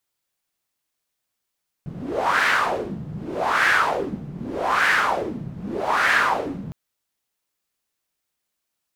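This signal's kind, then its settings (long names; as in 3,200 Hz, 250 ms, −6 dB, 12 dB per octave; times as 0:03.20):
wind from filtered noise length 4.86 s, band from 150 Hz, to 1,700 Hz, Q 4, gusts 4, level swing 15 dB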